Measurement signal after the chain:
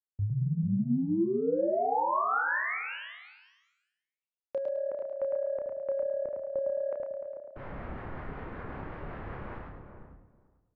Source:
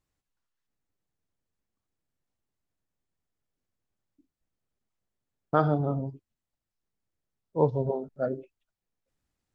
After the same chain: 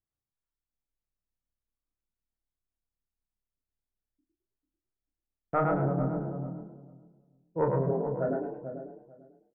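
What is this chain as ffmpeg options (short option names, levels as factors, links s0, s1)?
-filter_complex "[0:a]asoftclip=type=tanh:threshold=0.188,lowpass=f=1800:w=0.5412,lowpass=f=1800:w=1.3066,agate=range=0.251:threshold=0.00355:ratio=16:detection=peak,asplit=2[s0][s1];[s1]adelay=443,lowpass=f=880:p=1,volume=0.447,asplit=2[s2][s3];[s3]adelay=443,lowpass=f=880:p=1,volume=0.18,asplit=2[s4][s5];[s5]adelay=443,lowpass=f=880:p=1,volume=0.18[s6];[s2][s4][s6]amix=inputs=3:normalize=0[s7];[s0][s7]amix=inputs=2:normalize=0,acrossover=split=540[s8][s9];[s8]aeval=exprs='val(0)*(1-0.5/2+0.5/2*cos(2*PI*5.3*n/s))':c=same[s10];[s9]aeval=exprs='val(0)*(1-0.5/2-0.5/2*cos(2*PI*5.3*n/s))':c=same[s11];[s10][s11]amix=inputs=2:normalize=0,asplit=2[s12][s13];[s13]adelay=30,volume=0.531[s14];[s12][s14]amix=inputs=2:normalize=0,asplit=2[s15][s16];[s16]asplit=4[s17][s18][s19][s20];[s17]adelay=106,afreqshift=36,volume=0.631[s21];[s18]adelay=212,afreqshift=72,volume=0.209[s22];[s19]adelay=318,afreqshift=108,volume=0.0684[s23];[s20]adelay=424,afreqshift=144,volume=0.0226[s24];[s21][s22][s23][s24]amix=inputs=4:normalize=0[s25];[s15][s25]amix=inputs=2:normalize=0"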